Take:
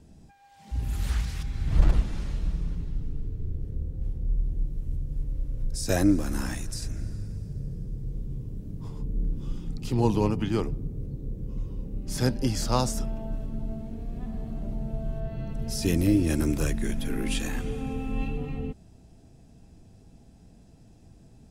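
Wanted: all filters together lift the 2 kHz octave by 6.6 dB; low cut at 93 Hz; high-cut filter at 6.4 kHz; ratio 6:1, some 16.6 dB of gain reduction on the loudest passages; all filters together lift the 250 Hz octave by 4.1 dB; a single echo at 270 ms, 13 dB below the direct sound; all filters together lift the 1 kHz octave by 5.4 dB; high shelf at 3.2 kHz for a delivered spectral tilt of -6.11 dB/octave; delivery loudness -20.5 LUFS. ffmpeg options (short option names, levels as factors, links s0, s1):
-af "highpass=93,lowpass=6400,equalizer=f=250:t=o:g=5,equalizer=f=1000:t=o:g=5,equalizer=f=2000:t=o:g=9,highshelf=f=3200:g=-6,acompressor=threshold=0.0251:ratio=6,aecho=1:1:270:0.224,volume=7.08"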